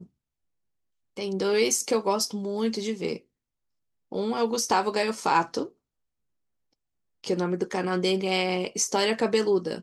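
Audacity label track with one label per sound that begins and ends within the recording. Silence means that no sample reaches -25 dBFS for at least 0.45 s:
1.180000	3.160000	sound
4.130000	5.630000	sound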